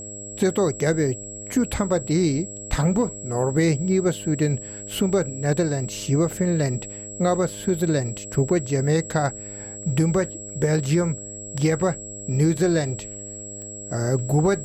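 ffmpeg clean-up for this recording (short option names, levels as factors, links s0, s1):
-af "adeclick=t=4,bandreject=f=103:t=h:w=4,bandreject=f=206:t=h:w=4,bandreject=f=309:t=h:w=4,bandreject=f=412:t=h:w=4,bandreject=f=515:t=h:w=4,bandreject=f=618:t=h:w=4,bandreject=f=7700:w=30"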